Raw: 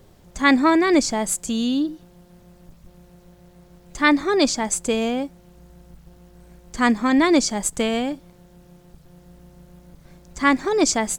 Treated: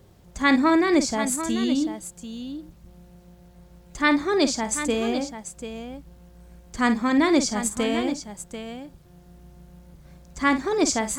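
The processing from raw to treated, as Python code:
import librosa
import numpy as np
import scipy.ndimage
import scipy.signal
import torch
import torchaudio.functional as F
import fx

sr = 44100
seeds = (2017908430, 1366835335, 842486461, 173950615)

p1 = scipy.signal.sosfilt(scipy.signal.butter(2, 45.0, 'highpass', fs=sr, output='sos'), x)
p2 = fx.low_shelf(p1, sr, hz=94.0, db=7.5)
p3 = p2 + fx.echo_multitap(p2, sr, ms=(52, 740), db=(-11.0, -10.5), dry=0)
y = F.gain(torch.from_numpy(p3), -3.5).numpy()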